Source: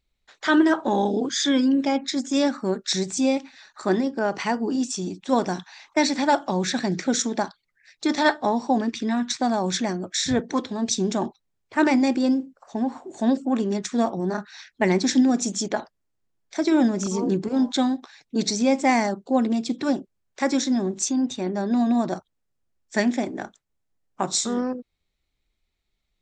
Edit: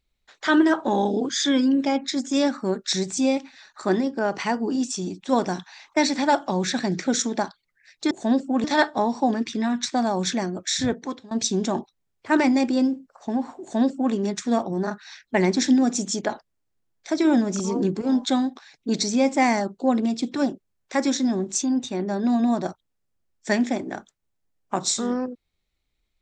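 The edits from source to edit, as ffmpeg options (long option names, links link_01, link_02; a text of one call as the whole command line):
ffmpeg -i in.wav -filter_complex "[0:a]asplit=4[link_01][link_02][link_03][link_04];[link_01]atrim=end=8.112[link_05];[link_02]atrim=start=13.078:end=13.612[link_06];[link_03]atrim=start=8.108:end=10.78,asetpts=PTS-STARTPTS,afade=type=out:start_time=2.162:duration=0.51:silence=0.105925[link_07];[link_04]atrim=start=10.78,asetpts=PTS-STARTPTS,afade=type=in:duration=0.004:curve=hsin:silence=0.105925[link_08];[link_05][link_06]acrossfade=duration=0.004:curve1=hsin:curve2=hsin[link_09];[link_07][link_08]concat=n=2:v=0:a=1[link_10];[link_09][link_10]acrossfade=duration=0.004:curve1=hsin:curve2=hsin" out.wav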